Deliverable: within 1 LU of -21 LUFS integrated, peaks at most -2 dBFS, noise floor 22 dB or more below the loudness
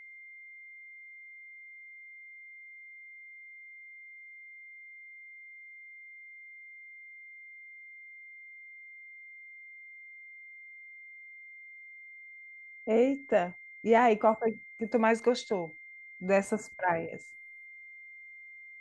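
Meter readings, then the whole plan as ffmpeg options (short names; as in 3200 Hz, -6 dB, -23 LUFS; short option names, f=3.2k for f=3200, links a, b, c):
steady tone 2100 Hz; tone level -47 dBFS; loudness -29.0 LUFS; peak -12.0 dBFS; loudness target -21.0 LUFS
-> -af "bandreject=f=2.1k:w=30"
-af "volume=8dB"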